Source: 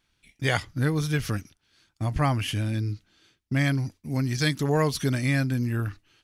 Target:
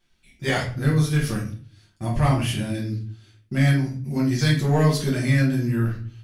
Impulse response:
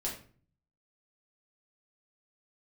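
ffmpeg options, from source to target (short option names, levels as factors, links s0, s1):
-filter_complex "[0:a]asettb=1/sr,asplit=3[s0][s1][s2];[s0]atrim=end=0.964[s3];[s1]atrim=start=0.96:end=3.74,asetpts=PTS-STARTPTS,afade=t=in:d=0.004:c=qsin,afade=t=out:st=2.776:d=0.004:c=qsin,equalizer=f=9600:t=o:w=0.41:g=5.5[s4];[s2]atrim=start=3.736[s5];[s3][s4]acrossfade=d=0.004:c1=hsin:c2=qsin[s6];[s6][s5]acrossfade=d=0.004:c1=qsin:c2=hsin,asoftclip=type=hard:threshold=0.158[s7];[1:a]atrim=start_sample=2205[s8];[s7][s8]afir=irnorm=-1:irlink=0"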